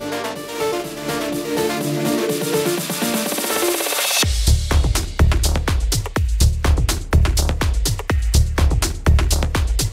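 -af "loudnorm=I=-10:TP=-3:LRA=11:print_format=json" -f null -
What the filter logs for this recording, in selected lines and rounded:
"input_i" : "-19.2",
"input_tp" : "-5.2",
"input_lra" : "1.8",
"input_thresh" : "-29.2",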